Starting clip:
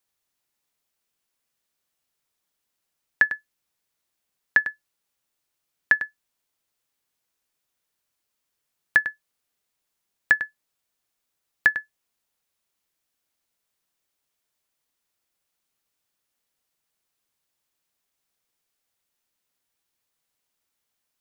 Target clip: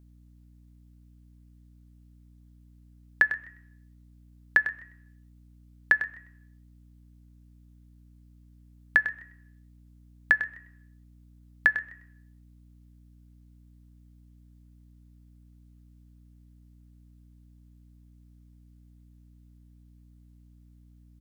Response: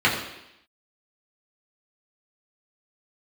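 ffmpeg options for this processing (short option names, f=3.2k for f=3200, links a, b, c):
-filter_complex "[0:a]asplit=3[a][b][c];[b]adelay=127,afreqshift=89,volume=-22dB[d];[c]adelay=254,afreqshift=178,volume=-31.1dB[e];[a][d][e]amix=inputs=3:normalize=0,asplit=2[f][g];[1:a]atrim=start_sample=2205,lowpass=3.1k[h];[g][h]afir=irnorm=-1:irlink=0,volume=-33dB[i];[f][i]amix=inputs=2:normalize=0,aeval=exprs='val(0)+0.00282*(sin(2*PI*60*n/s)+sin(2*PI*2*60*n/s)/2+sin(2*PI*3*60*n/s)/3+sin(2*PI*4*60*n/s)/4+sin(2*PI*5*60*n/s)/5)':c=same,volume=-2.5dB"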